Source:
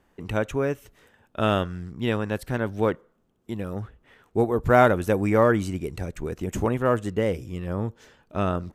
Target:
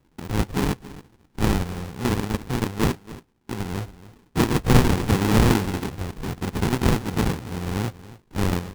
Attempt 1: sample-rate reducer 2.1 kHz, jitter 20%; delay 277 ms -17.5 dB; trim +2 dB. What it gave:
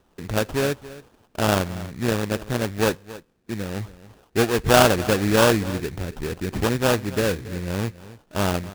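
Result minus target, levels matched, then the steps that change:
sample-rate reducer: distortion -16 dB
change: sample-rate reducer 620 Hz, jitter 20%

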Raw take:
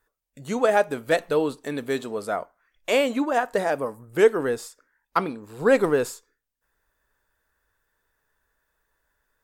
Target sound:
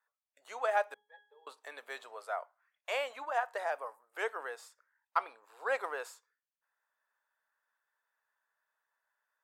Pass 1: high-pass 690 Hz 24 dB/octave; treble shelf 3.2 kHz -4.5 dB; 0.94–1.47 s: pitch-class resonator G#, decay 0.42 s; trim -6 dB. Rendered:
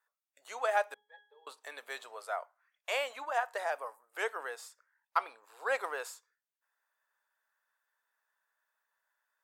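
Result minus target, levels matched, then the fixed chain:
8 kHz band +5.0 dB
high-pass 690 Hz 24 dB/octave; treble shelf 3.2 kHz -11 dB; 0.94–1.47 s: pitch-class resonator G#, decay 0.42 s; trim -6 dB

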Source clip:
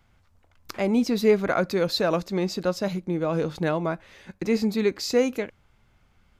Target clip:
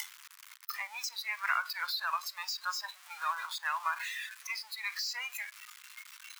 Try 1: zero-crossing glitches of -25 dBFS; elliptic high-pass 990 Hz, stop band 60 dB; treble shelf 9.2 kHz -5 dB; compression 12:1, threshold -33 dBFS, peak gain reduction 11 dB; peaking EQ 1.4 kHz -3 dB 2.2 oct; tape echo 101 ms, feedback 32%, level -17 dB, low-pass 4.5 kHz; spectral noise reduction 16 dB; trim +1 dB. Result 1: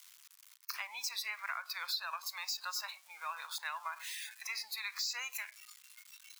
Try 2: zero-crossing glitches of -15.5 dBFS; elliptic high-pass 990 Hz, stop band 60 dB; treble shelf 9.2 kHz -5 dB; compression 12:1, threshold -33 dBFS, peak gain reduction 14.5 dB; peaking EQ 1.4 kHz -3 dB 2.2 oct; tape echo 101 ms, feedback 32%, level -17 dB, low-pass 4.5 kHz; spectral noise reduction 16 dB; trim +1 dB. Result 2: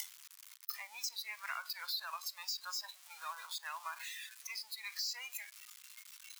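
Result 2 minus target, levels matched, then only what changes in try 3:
1 kHz band -4.5 dB
change: peaking EQ 1.4 kHz +8.5 dB 2.2 oct

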